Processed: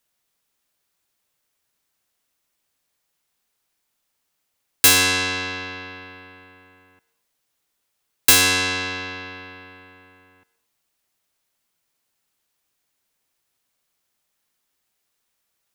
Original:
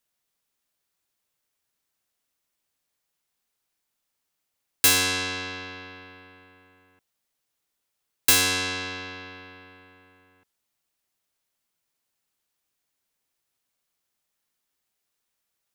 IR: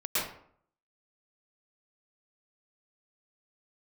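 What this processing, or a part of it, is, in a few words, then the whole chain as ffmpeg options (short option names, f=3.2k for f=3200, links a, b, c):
filtered reverb send: -filter_complex "[0:a]asplit=2[a][b];[b]highpass=410,lowpass=4.3k[c];[1:a]atrim=start_sample=2205[d];[c][d]afir=irnorm=-1:irlink=0,volume=-23.5dB[e];[a][e]amix=inputs=2:normalize=0,volume=5dB"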